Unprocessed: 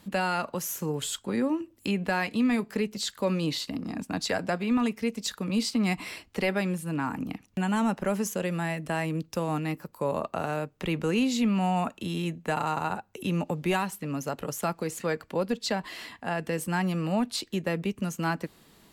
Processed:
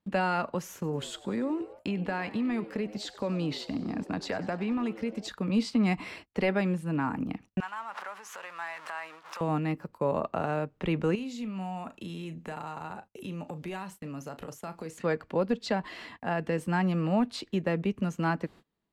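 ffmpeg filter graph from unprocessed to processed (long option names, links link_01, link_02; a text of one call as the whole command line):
ffmpeg -i in.wav -filter_complex "[0:a]asettb=1/sr,asplit=3[link_01][link_02][link_03];[link_01]atrim=end=0.744[link_04];[link_02]atrim=start=0.74:end=5.29,asetpts=PTS-STARTPTS,afade=type=in:duration=0.004:curve=qsin,afade=type=out:start_time=4.546:duration=0.004:curve=qsin,acompressor=threshold=-27dB:ratio=6:attack=3.2:release=140:knee=1:detection=peak,asplit=7[link_05][link_06][link_07][link_08][link_09][link_10][link_11];[link_06]adelay=96,afreqshift=100,volume=-17.5dB[link_12];[link_07]adelay=192,afreqshift=200,volume=-21.9dB[link_13];[link_08]adelay=288,afreqshift=300,volume=-26.4dB[link_14];[link_09]adelay=384,afreqshift=400,volume=-30.8dB[link_15];[link_10]adelay=480,afreqshift=500,volume=-35.2dB[link_16];[link_11]adelay=576,afreqshift=600,volume=-39.7dB[link_17];[link_05][link_12][link_13][link_14][link_15][link_16][link_17]amix=inputs=7:normalize=0,atrim=end_sample=200655[link_18];[link_03]atrim=start=5.286[link_19];[link_04][link_18]acrossfade=duration=0.004:curve1=hsin:curve2=qsin[link_20];[link_20][link_19]acrossfade=duration=0.004:curve1=qsin:curve2=hsin,asettb=1/sr,asplit=3[link_21][link_22][link_23];[link_21]atrim=end=7.604[link_24];[link_22]atrim=start=7.6:end=9.41,asetpts=PTS-STARTPTS,afade=type=in:duration=0.004:curve=qsin,afade=type=out:start_time=1.806:duration=0.004:curve=qsin,aeval=exprs='val(0)+0.5*0.0211*sgn(val(0))':channel_layout=same,acompressor=threshold=-31dB:ratio=12:attack=3.2:release=140:knee=1:detection=peak,highpass=frequency=1100:width_type=q:width=2.2[link_25];[link_23]atrim=start=9.406[link_26];[link_24][link_25]acrossfade=duration=0.004:curve1=hsin:curve2=qsin[link_27];[link_27][link_26]acrossfade=duration=0.004:curve1=qsin:curve2=hsin,asettb=1/sr,asplit=3[link_28][link_29][link_30];[link_28]atrim=end=11.154[link_31];[link_29]atrim=start=11.15:end=14.98,asetpts=PTS-STARTPTS,afade=type=in:duration=0.004:curve=qsin,afade=type=out:start_time=3.826:duration=0.004:curve=qsin,highshelf=frequency=5100:gain=11.5,acompressor=threshold=-38dB:ratio=3:attack=3.2:release=140:knee=1:detection=peak,asplit=2[link_32][link_33];[link_33]adelay=37,volume=-12dB[link_34];[link_32][link_34]amix=inputs=2:normalize=0,atrim=end_sample=168903[link_35];[link_30]atrim=start=14.976[link_36];[link_31][link_35]acrossfade=duration=0.004:curve1=hsin:curve2=qsin[link_37];[link_37][link_36]acrossfade=duration=0.004:curve1=qsin:curve2=hsin,aemphasis=mode=reproduction:type=75fm,agate=range=-26dB:threshold=-48dB:ratio=16:detection=peak" out.wav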